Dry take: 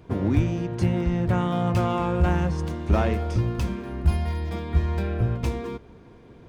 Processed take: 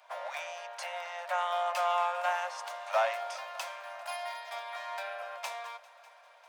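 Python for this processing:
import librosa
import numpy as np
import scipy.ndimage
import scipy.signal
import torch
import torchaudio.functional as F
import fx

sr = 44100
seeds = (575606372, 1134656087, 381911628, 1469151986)

y = scipy.signal.sosfilt(scipy.signal.butter(16, 570.0, 'highpass', fs=sr, output='sos'), x)
y = fx.echo_heads(y, sr, ms=199, heads='second and third', feedback_pct=62, wet_db=-23.0)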